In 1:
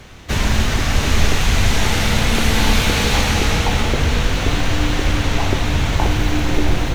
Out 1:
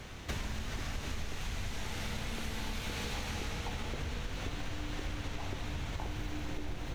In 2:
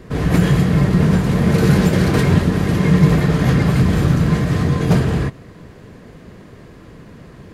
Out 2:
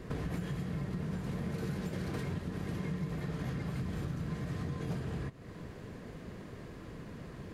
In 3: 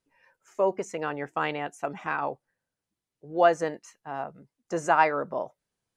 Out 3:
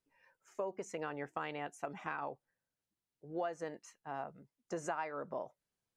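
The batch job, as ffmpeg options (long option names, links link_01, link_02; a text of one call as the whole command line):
ffmpeg -i in.wav -af "acompressor=threshold=-29dB:ratio=6,volume=-6.5dB" out.wav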